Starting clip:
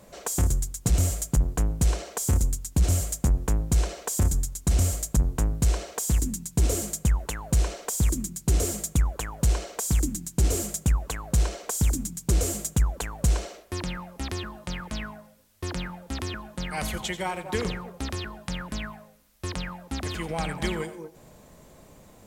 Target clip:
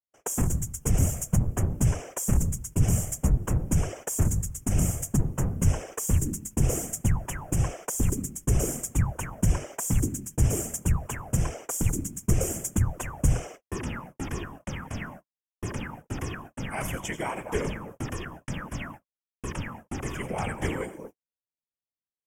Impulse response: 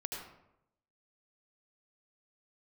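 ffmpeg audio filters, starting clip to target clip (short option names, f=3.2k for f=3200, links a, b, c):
-af "asuperstop=centerf=4100:order=4:qfactor=1.6,afftfilt=real='hypot(re,im)*cos(2*PI*random(0))':imag='hypot(re,im)*sin(2*PI*random(1))':win_size=512:overlap=0.75,agate=range=-57dB:threshold=-47dB:ratio=16:detection=peak,volume=5dB"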